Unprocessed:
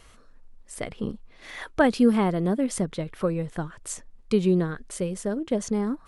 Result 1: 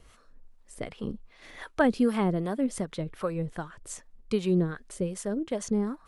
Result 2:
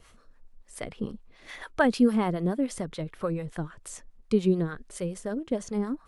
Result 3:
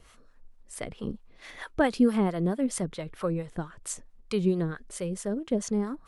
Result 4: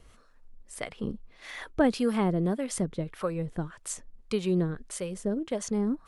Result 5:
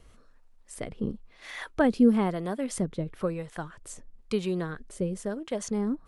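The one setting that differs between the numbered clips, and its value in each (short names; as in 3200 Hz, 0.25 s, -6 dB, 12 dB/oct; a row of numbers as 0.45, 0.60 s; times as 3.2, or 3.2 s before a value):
harmonic tremolo, rate: 2.6, 6.9, 4.5, 1.7, 1 Hz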